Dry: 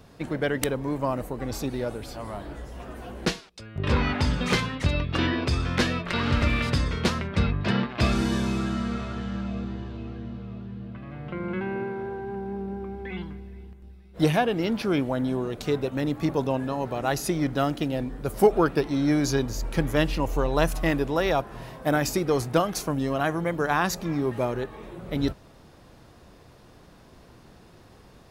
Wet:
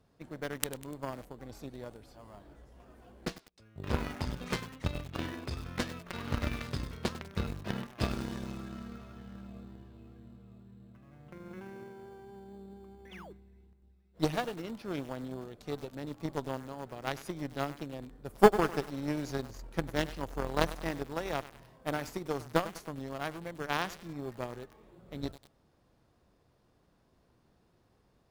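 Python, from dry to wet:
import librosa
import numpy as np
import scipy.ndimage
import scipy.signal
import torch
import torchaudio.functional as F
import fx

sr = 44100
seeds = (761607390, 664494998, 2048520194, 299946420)

p1 = fx.spec_paint(x, sr, seeds[0], shape='fall', start_s=13.11, length_s=0.22, low_hz=320.0, high_hz=3800.0, level_db=-33.0)
p2 = fx.cheby_harmonics(p1, sr, harmonics=(2, 3, 4, 5), levels_db=(-31, -10, -31, -39), full_scale_db=-6.5)
p3 = fx.sample_hold(p2, sr, seeds[1], rate_hz=3900.0, jitter_pct=0)
p4 = p2 + F.gain(torch.from_numpy(p3), -9.5).numpy()
y = fx.echo_crushed(p4, sr, ms=99, feedback_pct=55, bits=6, wet_db=-14)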